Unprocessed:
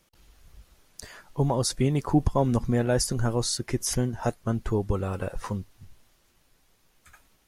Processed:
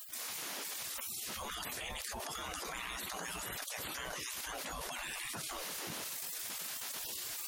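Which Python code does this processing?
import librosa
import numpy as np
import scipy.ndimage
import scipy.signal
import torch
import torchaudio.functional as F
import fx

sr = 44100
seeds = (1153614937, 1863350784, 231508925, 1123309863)

p1 = fx.spec_gate(x, sr, threshold_db=-30, keep='weak')
p2 = fx.low_shelf(p1, sr, hz=180.0, db=5.5)
p3 = fx.level_steps(p2, sr, step_db=14)
p4 = p2 + (p3 * librosa.db_to_amplitude(0.0))
p5 = fx.transient(p4, sr, attack_db=-3, sustain_db=7)
y = fx.env_flatten(p5, sr, amount_pct=100)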